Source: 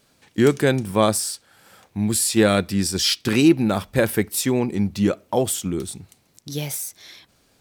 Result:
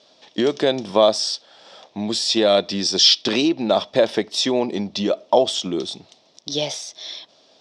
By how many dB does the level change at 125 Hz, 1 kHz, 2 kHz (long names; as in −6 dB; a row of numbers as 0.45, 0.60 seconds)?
−10.5, +3.0, −3.0 decibels